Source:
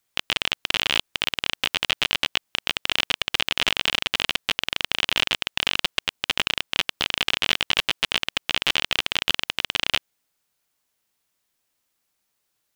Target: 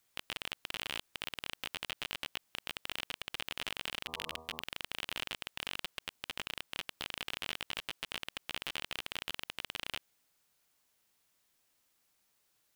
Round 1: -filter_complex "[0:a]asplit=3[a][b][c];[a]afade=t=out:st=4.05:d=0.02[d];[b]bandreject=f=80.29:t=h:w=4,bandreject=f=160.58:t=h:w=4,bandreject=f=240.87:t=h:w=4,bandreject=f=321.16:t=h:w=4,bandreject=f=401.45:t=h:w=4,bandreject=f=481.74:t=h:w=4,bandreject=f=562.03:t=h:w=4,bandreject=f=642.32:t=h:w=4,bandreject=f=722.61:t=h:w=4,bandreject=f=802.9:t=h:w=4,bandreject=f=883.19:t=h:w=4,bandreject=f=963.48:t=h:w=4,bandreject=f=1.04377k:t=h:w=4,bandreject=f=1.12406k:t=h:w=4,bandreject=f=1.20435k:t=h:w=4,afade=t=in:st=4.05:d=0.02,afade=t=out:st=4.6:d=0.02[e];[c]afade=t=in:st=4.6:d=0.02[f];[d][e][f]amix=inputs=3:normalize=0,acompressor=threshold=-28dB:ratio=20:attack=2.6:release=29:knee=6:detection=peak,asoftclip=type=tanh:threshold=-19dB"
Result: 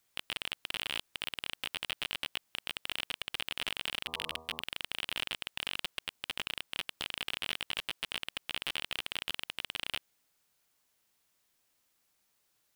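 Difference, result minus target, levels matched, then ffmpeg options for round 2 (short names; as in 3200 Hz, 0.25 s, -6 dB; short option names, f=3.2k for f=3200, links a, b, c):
compressor: peak gain reduction -6.5 dB
-filter_complex "[0:a]asplit=3[a][b][c];[a]afade=t=out:st=4.05:d=0.02[d];[b]bandreject=f=80.29:t=h:w=4,bandreject=f=160.58:t=h:w=4,bandreject=f=240.87:t=h:w=4,bandreject=f=321.16:t=h:w=4,bandreject=f=401.45:t=h:w=4,bandreject=f=481.74:t=h:w=4,bandreject=f=562.03:t=h:w=4,bandreject=f=642.32:t=h:w=4,bandreject=f=722.61:t=h:w=4,bandreject=f=802.9:t=h:w=4,bandreject=f=883.19:t=h:w=4,bandreject=f=963.48:t=h:w=4,bandreject=f=1.04377k:t=h:w=4,bandreject=f=1.12406k:t=h:w=4,bandreject=f=1.20435k:t=h:w=4,afade=t=in:st=4.05:d=0.02,afade=t=out:st=4.6:d=0.02[e];[c]afade=t=in:st=4.6:d=0.02[f];[d][e][f]amix=inputs=3:normalize=0,acompressor=threshold=-35dB:ratio=20:attack=2.6:release=29:knee=6:detection=peak,asoftclip=type=tanh:threshold=-19dB"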